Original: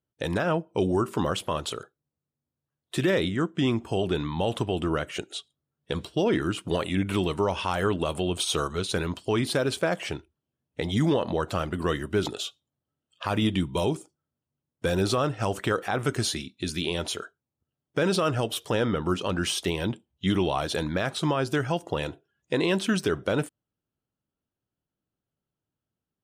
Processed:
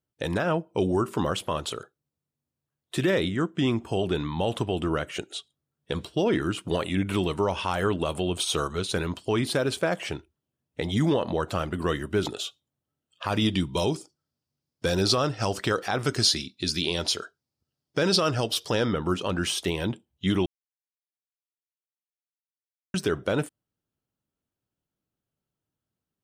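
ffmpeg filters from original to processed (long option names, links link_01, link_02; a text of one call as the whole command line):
ffmpeg -i in.wav -filter_complex "[0:a]asettb=1/sr,asplit=3[link_01][link_02][link_03];[link_01]atrim=end=13.324[link_04];[link_02]atrim=start=13.32:end=18.93,asetpts=PTS-STARTPTS,afade=type=in:duration=0.004:curve=qsin,afade=type=out:start_time=5.606:duration=0.004:curve=qsin,equalizer=frequency=4900:width_type=o:width=0.58:gain=13[link_05];[link_03]atrim=start=18.926[link_06];[link_04][link_05]acrossfade=duration=0.004:curve1=hsin:curve2=qsin[link_07];[link_07][link_06]acrossfade=duration=0.004:curve1=qsin:curve2=hsin,asplit=3[link_08][link_09][link_10];[link_08]atrim=end=20.46,asetpts=PTS-STARTPTS,afade=type=out:start_time=20.456:duration=0.004:curve=hsin[link_11];[link_09]atrim=start=20.46:end=22.94,asetpts=PTS-STARTPTS,volume=0[link_12];[link_10]atrim=start=22.94,asetpts=PTS-STARTPTS,afade=type=in:duration=0.004:curve=hsin[link_13];[link_11][link_12][link_13]concat=n=3:v=0:a=1" out.wav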